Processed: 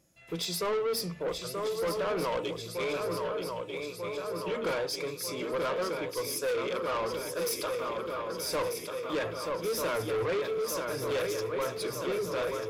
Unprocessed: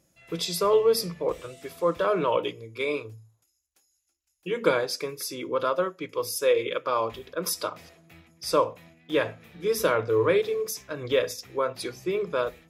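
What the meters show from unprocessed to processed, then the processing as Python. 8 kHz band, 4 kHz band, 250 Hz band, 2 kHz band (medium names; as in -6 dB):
-2.5 dB, -2.5 dB, -4.0 dB, -3.5 dB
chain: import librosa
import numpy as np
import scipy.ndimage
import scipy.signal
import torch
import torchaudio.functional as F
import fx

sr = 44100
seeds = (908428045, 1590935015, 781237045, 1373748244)

y = fx.echo_swing(x, sr, ms=1241, ratio=3, feedback_pct=63, wet_db=-8.0)
y = 10.0 ** (-25.5 / 20.0) * np.tanh(y / 10.0 ** (-25.5 / 20.0))
y = y * librosa.db_to_amplitude(-1.5)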